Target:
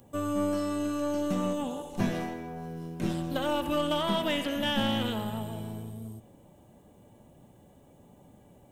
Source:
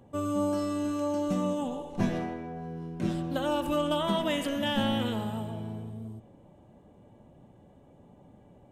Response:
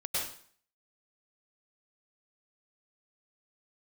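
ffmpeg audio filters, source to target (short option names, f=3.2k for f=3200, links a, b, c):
-filter_complex "[0:a]aemphasis=mode=production:type=75fm,acrossover=split=3900[a][b];[b]acompressor=threshold=-50dB:ratio=4:attack=1:release=60[c];[a][c]amix=inputs=2:normalize=0,aeval=exprs='0.168*(cos(1*acos(clip(val(0)/0.168,-1,1)))-cos(1*PI/2))+0.00668*(cos(8*acos(clip(val(0)/0.168,-1,1)))-cos(8*PI/2))':c=same"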